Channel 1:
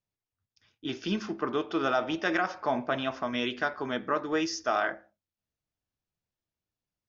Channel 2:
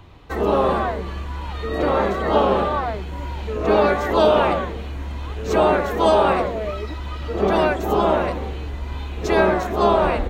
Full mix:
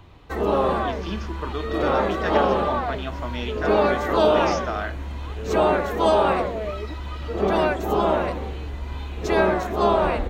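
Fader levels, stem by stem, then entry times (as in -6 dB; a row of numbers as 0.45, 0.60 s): -1.5, -2.5 dB; 0.00, 0.00 s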